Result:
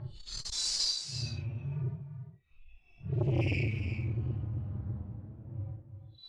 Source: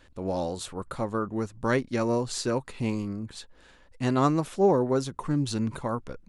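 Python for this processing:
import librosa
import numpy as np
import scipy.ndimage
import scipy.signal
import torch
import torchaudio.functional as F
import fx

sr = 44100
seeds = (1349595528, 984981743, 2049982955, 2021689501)

y = fx.bin_expand(x, sr, power=3.0)
y = scipy.signal.sosfilt(scipy.signal.cheby1(5, 1.0, [180.0, 2200.0], 'bandstop', fs=sr, output='sos'), y)
y = fx.high_shelf(y, sr, hz=6300.0, db=-7.5)
y = fx.leveller(y, sr, passes=3)
y = fx.paulstretch(y, sr, seeds[0], factor=5.7, window_s=0.05, from_s=2.26)
y = fx.env_lowpass(y, sr, base_hz=2200.0, full_db=-21.0)
y = y + 10.0 ** (-10.0 / 20.0) * np.pad(y, (int(345 * sr / 1000.0), 0))[:len(y)]
y = fx.transformer_sat(y, sr, knee_hz=370.0)
y = F.gain(torch.from_numpy(y), 2.5).numpy()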